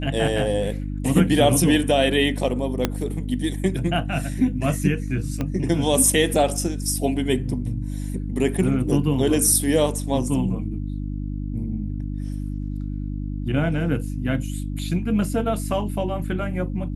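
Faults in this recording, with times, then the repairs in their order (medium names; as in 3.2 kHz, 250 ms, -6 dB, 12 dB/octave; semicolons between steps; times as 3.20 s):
hum 50 Hz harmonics 6 -28 dBFS
2.85 s: pop -5 dBFS
5.41 s: pop -13 dBFS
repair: de-click; de-hum 50 Hz, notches 6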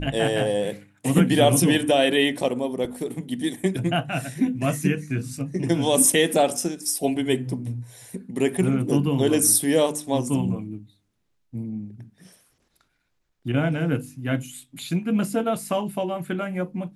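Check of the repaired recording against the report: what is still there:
2.85 s: pop
5.41 s: pop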